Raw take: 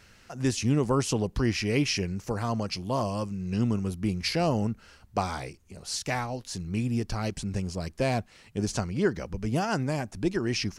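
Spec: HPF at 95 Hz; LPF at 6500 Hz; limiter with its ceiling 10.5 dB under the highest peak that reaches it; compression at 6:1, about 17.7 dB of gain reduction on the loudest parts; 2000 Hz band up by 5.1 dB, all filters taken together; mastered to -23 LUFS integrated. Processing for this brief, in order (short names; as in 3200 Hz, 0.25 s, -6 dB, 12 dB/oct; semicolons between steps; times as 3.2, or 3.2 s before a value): HPF 95 Hz; LPF 6500 Hz; bell 2000 Hz +6.5 dB; compressor 6:1, threshold -40 dBFS; gain +23 dB; limiter -13 dBFS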